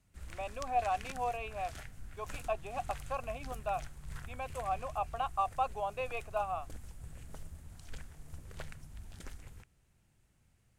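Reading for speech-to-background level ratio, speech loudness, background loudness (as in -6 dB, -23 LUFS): 12.0 dB, -37.5 LUFS, -49.5 LUFS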